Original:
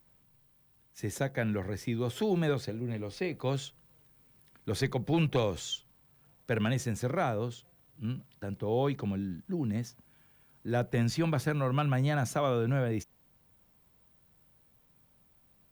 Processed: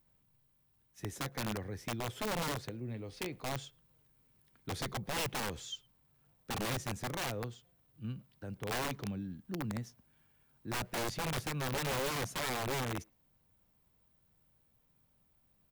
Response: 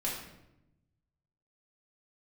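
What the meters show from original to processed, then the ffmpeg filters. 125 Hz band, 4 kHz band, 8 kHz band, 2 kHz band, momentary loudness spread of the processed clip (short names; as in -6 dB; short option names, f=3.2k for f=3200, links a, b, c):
-9.5 dB, +0.5 dB, +2.0 dB, -1.5 dB, 11 LU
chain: -filter_complex "[0:a]lowshelf=f=110:g=3.5,aeval=exprs='(mod(15*val(0)+1,2)-1)/15':c=same,asplit=2[a][b];[b]adelay=110,highpass=300,lowpass=3.4k,asoftclip=type=hard:threshold=-33dB,volume=-27dB[c];[a][c]amix=inputs=2:normalize=0,volume=-7dB"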